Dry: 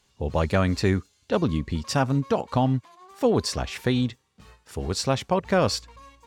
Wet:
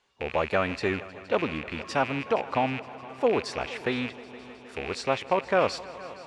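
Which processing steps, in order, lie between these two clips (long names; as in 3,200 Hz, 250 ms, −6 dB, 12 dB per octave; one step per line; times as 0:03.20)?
loose part that buzzes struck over −35 dBFS, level −21 dBFS
Butterworth low-pass 11,000 Hz 48 dB per octave
bass and treble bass −15 dB, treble −13 dB
echo machine with several playback heads 156 ms, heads all three, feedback 70%, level −23 dB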